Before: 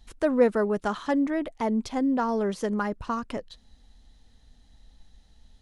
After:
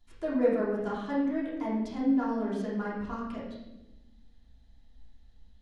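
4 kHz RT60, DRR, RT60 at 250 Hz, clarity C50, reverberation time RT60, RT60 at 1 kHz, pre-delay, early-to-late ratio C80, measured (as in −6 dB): 0.80 s, −7.0 dB, 1.7 s, 1.0 dB, 1.0 s, 0.80 s, 3 ms, 4.5 dB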